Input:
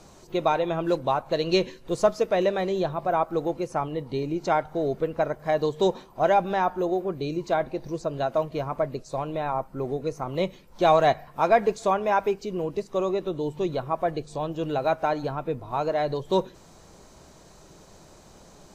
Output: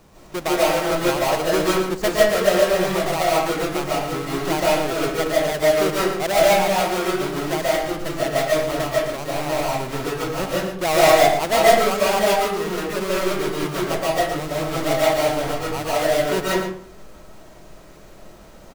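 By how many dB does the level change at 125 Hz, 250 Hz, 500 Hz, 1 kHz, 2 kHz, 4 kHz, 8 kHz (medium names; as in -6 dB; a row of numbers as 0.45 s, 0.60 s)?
+3.5 dB, +5.0 dB, +5.5 dB, +4.0 dB, +11.0 dB, +12.0 dB, no reading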